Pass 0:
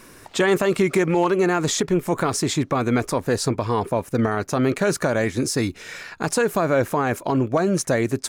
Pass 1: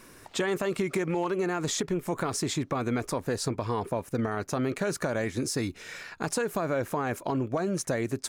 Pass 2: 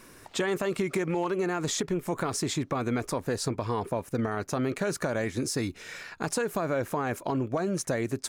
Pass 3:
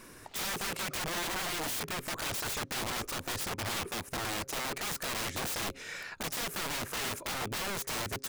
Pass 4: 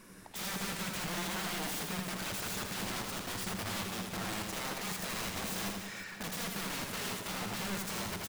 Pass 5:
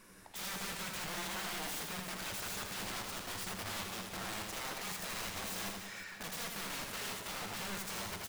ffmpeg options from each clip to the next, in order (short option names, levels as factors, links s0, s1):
-af "acompressor=threshold=0.1:ratio=3,volume=0.531"
-af anull
-af "aeval=exprs='(mod(31.6*val(0)+1,2)-1)/31.6':c=same,bandreject=f=134.2:t=h:w=4,bandreject=f=268.4:t=h:w=4,bandreject=f=402.6:t=h:w=4,bandreject=f=536.8:t=h:w=4"
-filter_complex "[0:a]equalizer=f=190:w=6.5:g=14.5,asplit=2[s0][s1];[s1]aecho=0:1:80|184|319.2|495|723.4:0.631|0.398|0.251|0.158|0.1[s2];[s0][s2]amix=inputs=2:normalize=0,volume=0.562"
-af "equalizer=f=190:t=o:w=2.1:g=-5.5,flanger=delay=9.7:depth=4.6:regen=-70:speed=0.36:shape=sinusoidal,volume=1.26"